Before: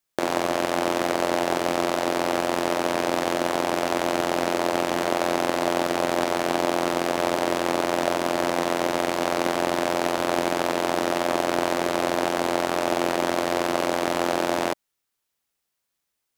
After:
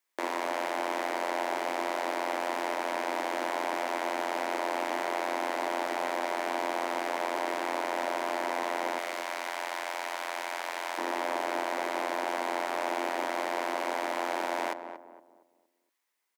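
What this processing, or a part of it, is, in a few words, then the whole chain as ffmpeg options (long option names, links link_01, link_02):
laptop speaker: -filter_complex "[0:a]asettb=1/sr,asplit=3[link_01][link_02][link_03];[link_01]atrim=end=8.984[link_04];[link_02]atrim=start=8.98:end=10.98,asetpts=PTS-STARTPTS,afade=type=in:duration=0.004:curve=qsin,afade=type=out:start_time=1.996:duration=0.004:curve=qsin,highpass=frequency=1500:poles=1[link_05];[link_03]atrim=start=10.976[link_06];[link_04][link_05]acrossfade=duration=0.004:curve1=hsin:curve2=qsin[link_07];[link_07][link_06]acrossfade=duration=0.004:curve1=qsin:curve2=hsin,highpass=frequency=260:width=0.5412,highpass=frequency=260:width=1.3066,equalizer=frequency=970:width_type=o:width=0.39:gain=8,equalizer=frequency=2000:width_type=o:width=0.56:gain=8,alimiter=limit=-17dB:level=0:latency=1:release=23,asplit=2[link_08][link_09];[link_09]adelay=232,lowpass=frequency=1000:poles=1,volume=-7.5dB,asplit=2[link_10][link_11];[link_11]adelay=232,lowpass=frequency=1000:poles=1,volume=0.4,asplit=2[link_12][link_13];[link_13]adelay=232,lowpass=frequency=1000:poles=1,volume=0.4,asplit=2[link_14][link_15];[link_15]adelay=232,lowpass=frequency=1000:poles=1,volume=0.4,asplit=2[link_16][link_17];[link_17]adelay=232,lowpass=frequency=1000:poles=1,volume=0.4[link_18];[link_08][link_10][link_12][link_14][link_16][link_18]amix=inputs=6:normalize=0,volume=-3dB"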